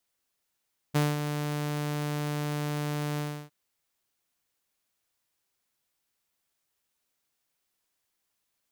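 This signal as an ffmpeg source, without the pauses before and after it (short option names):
-f lavfi -i "aevalsrc='0.119*(2*mod(148*t,1)-1)':d=2.557:s=44100,afade=t=in:d=0.02,afade=t=out:st=0.02:d=0.199:silence=0.398,afade=t=out:st=2.25:d=0.307"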